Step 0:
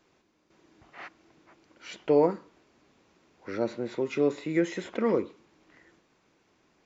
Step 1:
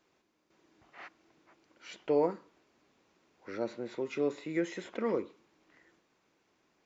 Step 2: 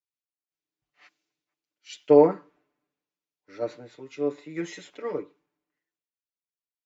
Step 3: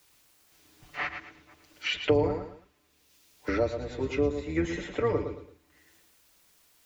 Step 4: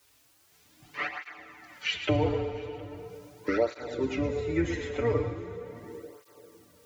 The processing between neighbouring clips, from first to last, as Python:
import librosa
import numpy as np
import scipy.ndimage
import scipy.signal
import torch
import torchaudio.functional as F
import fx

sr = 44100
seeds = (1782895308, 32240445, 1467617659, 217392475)

y1 = fx.low_shelf(x, sr, hz=180.0, db=-6.0)
y1 = y1 * librosa.db_to_amplitude(-5.0)
y2 = y1 + 0.96 * np.pad(y1, (int(6.8 * sr / 1000.0), 0))[:len(y1)]
y2 = fx.rider(y2, sr, range_db=4, speed_s=0.5)
y2 = fx.band_widen(y2, sr, depth_pct=100)
y2 = y2 * librosa.db_to_amplitude(-6.0)
y3 = fx.octave_divider(y2, sr, octaves=2, level_db=-3.0)
y3 = fx.echo_feedback(y3, sr, ms=110, feedback_pct=21, wet_db=-9.0)
y3 = fx.band_squash(y3, sr, depth_pct=100)
y3 = y3 * librosa.db_to_amplitude(2.0)
y4 = y3 + 10.0 ** (-23.0 / 20.0) * np.pad(y3, (int(714 * sr / 1000.0), 0))[:len(y3)]
y4 = fx.rev_plate(y4, sr, seeds[0], rt60_s=3.9, hf_ratio=0.6, predelay_ms=0, drr_db=7.5)
y4 = fx.flanger_cancel(y4, sr, hz=0.4, depth_ms=6.3)
y4 = y4 * librosa.db_to_amplitude(2.5)